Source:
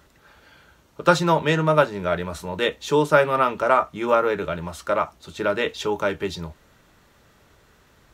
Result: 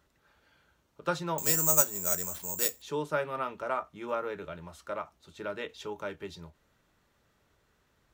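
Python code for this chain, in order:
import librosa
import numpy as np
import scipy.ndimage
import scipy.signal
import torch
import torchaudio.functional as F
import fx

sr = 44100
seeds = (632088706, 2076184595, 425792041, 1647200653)

y = fx.resample_bad(x, sr, factor=6, down='none', up='zero_stuff', at=(1.38, 2.82))
y = fx.end_taper(y, sr, db_per_s=360.0)
y = y * librosa.db_to_amplitude(-14.0)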